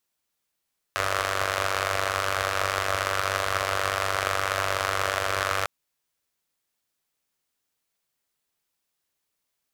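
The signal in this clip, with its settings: four-cylinder engine model, steady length 4.70 s, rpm 2900, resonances 84/620/1200 Hz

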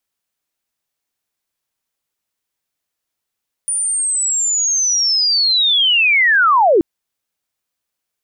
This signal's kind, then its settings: sweep linear 9.5 kHz -> 300 Hz -16 dBFS -> -8 dBFS 3.13 s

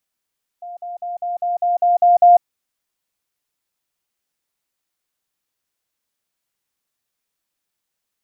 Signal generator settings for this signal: level ladder 703 Hz -29.5 dBFS, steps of 3 dB, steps 9, 0.15 s 0.05 s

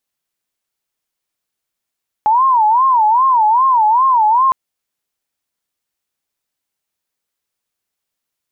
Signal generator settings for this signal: siren wail 848–1070 Hz 2.5 per s sine -8.5 dBFS 2.26 s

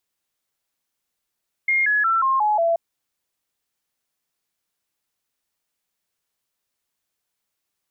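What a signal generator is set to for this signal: stepped sine 2.13 kHz down, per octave 3, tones 6, 0.18 s, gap 0.00 s -16 dBFS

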